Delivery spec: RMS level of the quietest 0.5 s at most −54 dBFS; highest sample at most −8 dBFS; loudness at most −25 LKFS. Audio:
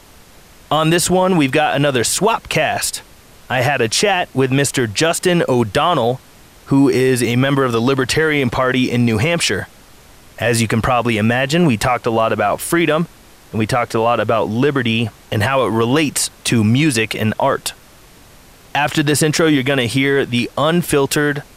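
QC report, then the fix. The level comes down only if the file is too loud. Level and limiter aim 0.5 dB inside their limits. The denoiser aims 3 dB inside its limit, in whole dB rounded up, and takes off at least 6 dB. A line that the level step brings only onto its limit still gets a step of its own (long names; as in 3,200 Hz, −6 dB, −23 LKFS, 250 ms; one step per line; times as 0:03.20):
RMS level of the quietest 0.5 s −44 dBFS: out of spec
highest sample −5.0 dBFS: out of spec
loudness −16.0 LKFS: out of spec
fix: broadband denoise 6 dB, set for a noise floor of −44 dBFS
level −9.5 dB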